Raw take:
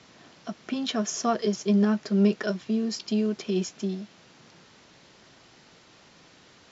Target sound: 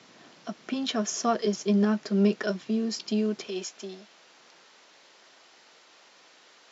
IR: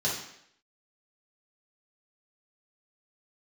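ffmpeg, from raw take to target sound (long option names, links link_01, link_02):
-af "asetnsamples=nb_out_samples=441:pad=0,asendcmd='3.47 highpass f 480',highpass=170"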